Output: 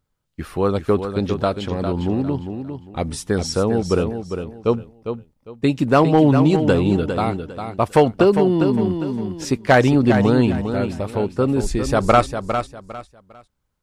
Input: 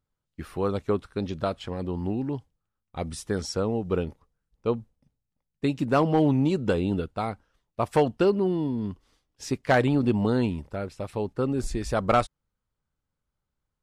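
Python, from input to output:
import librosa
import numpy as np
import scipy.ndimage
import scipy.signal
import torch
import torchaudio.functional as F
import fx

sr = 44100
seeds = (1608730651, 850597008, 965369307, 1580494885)

y = fx.echo_feedback(x, sr, ms=403, feedback_pct=26, wet_db=-8)
y = fx.band_squash(y, sr, depth_pct=40, at=(8.13, 9.45))
y = F.gain(torch.from_numpy(y), 7.5).numpy()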